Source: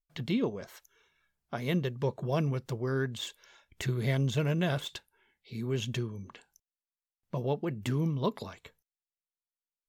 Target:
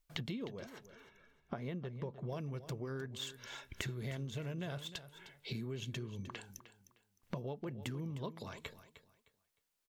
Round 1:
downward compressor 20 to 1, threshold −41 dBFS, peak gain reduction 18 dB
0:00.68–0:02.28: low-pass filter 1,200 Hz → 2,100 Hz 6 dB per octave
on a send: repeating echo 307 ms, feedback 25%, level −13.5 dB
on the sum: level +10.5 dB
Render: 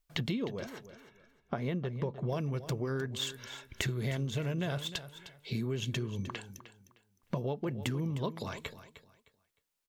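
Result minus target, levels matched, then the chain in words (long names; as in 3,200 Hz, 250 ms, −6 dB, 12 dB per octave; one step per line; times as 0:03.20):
downward compressor: peak gain reduction −7.5 dB
downward compressor 20 to 1, threshold −49 dBFS, peak gain reduction 25.5 dB
0:00.68–0:02.28: low-pass filter 1,200 Hz → 2,100 Hz 6 dB per octave
on a send: repeating echo 307 ms, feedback 25%, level −13.5 dB
on the sum: level +10.5 dB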